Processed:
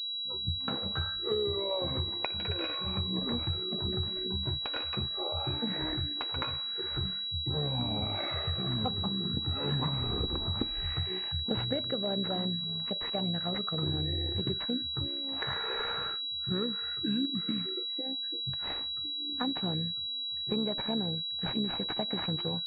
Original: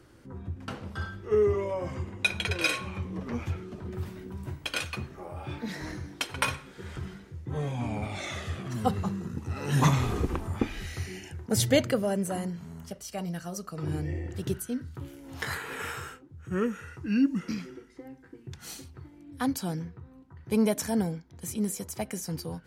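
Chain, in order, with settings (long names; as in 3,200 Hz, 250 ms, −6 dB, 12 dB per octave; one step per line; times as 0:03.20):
noise reduction from a noise print of the clip's start 18 dB
downward compressor 8 to 1, threshold −35 dBFS, peak gain reduction 17.5 dB
amplitude modulation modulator 66 Hz, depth 30%
switching amplifier with a slow clock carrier 3,900 Hz
level +7 dB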